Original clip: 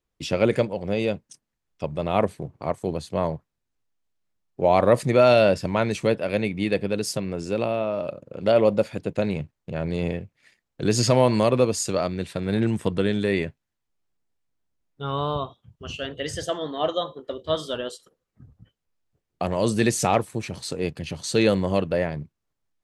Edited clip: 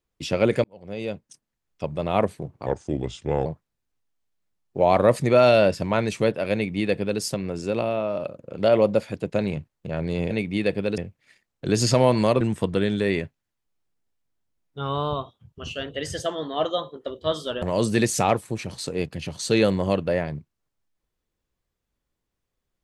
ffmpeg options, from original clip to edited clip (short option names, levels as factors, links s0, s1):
-filter_complex "[0:a]asplit=8[s0][s1][s2][s3][s4][s5][s6][s7];[s0]atrim=end=0.64,asetpts=PTS-STARTPTS,afade=t=out:st=0.636:d=0.004:c=hsin[s8];[s1]atrim=start=0.64:end=2.664,asetpts=PTS-STARTPTS,afade=t=in:d=1.2:c=qsin[s9];[s2]atrim=start=2.66:end=3.29,asetpts=PTS-STARTPTS,asetrate=34839,aresample=44100,atrim=end_sample=35168,asetpts=PTS-STARTPTS[s10];[s3]atrim=start=3.286:end=10.142[s11];[s4]atrim=start=6.368:end=7.042[s12];[s5]atrim=start=10.138:end=11.572[s13];[s6]atrim=start=12.638:end=17.852[s14];[s7]atrim=start=19.458[s15];[s8][s9]concat=n=2:v=0:a=1[s16];[s16][s10]acrossfade=d=0.004:c1=hsin:c2=hsin[s17];[s17][s11]acrossfade=d=0.004:c1=hsin:c2=hsin[s18];[s18][s12]acrossfade=d=0.004:c1=hsin:c2=hsin[s19];[s19][s13]acrossfade=d=0.004:c1=hsin:c2=hsin[s20];[s20][s14]acrossfade=d=0.004:c1=hsin:c2=hsin[s21];[s21][s15]acrossfade=d=0.004:c1=hsin:c2=hsin"